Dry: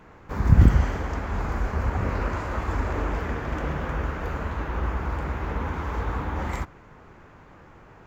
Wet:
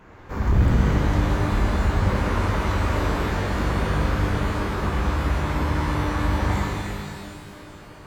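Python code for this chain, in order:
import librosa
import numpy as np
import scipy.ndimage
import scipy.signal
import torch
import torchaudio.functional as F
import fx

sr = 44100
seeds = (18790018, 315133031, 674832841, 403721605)

y = 10.0 ** (-17.5 / 20.0) * np.tanh(x / 10.0 ** (-17.5 / 20.0))
y = fx.rev_shimmer(y, sr, seeds[0], rt60_s=2.2, semitones=12, shimmer_db=-8, drr_db=-3.0)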